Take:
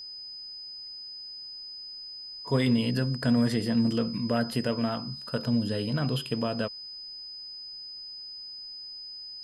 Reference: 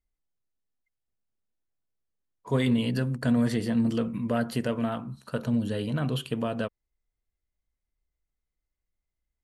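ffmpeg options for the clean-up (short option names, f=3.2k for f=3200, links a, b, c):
-af "bandreject=f=5k:w=30,agate=range=-21dB:threshold=-34dB"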